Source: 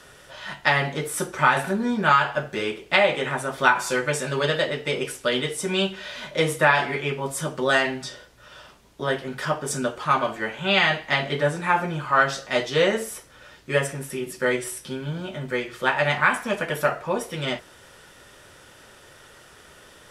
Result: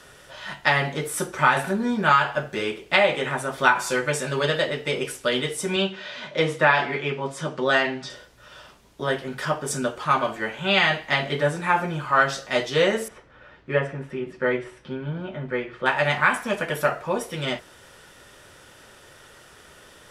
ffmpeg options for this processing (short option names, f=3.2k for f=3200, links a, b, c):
-filter_complex "[0:a]asettb=1/sr,asplit=3[a][b][c];[a]atrim=end=5.764[d];[b]atrim=start=5.76:end=8.1,asetpts=PTS-STARTPTS,afade=t=in:d=0.004:c=qsin,afade=t=out:st=2.336:d=0.004:c=qsin,highpass=110,lowpass=5.2k[e];[c]atrim=start=8.096[f];[d][e]acrossfade=d=0.004:c1=hsin:c2=qsin[g];[g][f]acrossfade=d=0.004:c1=qsin:c2=hsin,asettb=1/sr,asplit=3[h][i][j];[h]atrim=end=13.084[k];[i]atrim=start=13.08:end=15.86,asetpts=PTS-STARTPTS,afade=t=in:d=0.004:c=qsin,afade=t=out:st=2.776:d=0.004:c=qsin,lowpass=2.2k[l];[j]atrim=start=15.856[m];[k][l]acrossfade=d=0.004:c1=hsin:c2=qsin[n];[n][m]acrossfade=d=0.004:c1=qsin:c2=hsin"